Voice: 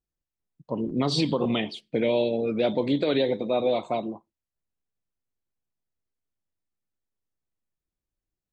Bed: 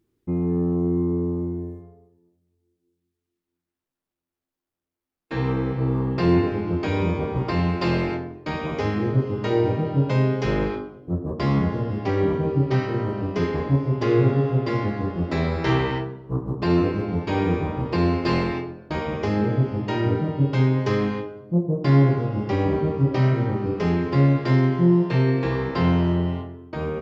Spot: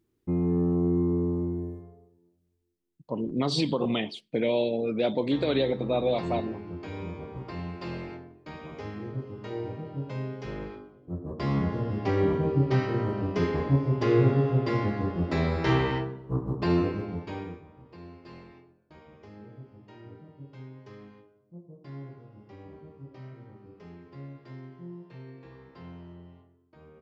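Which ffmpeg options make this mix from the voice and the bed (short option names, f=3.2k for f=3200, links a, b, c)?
-filter_complex "[0:a]adelay=2400,volume=-2dB[a];[1:a]volume=8.5dB,afade=t=out:st=2.46:d=0.39:silence=0.266073,afade=t=in:st=10.79:d=1.28:silence=0.281838,afade=t=out:st=16.55:d=1.07:silence=0.0749894[b];[a][b]amix=inputs=2:normalize=0"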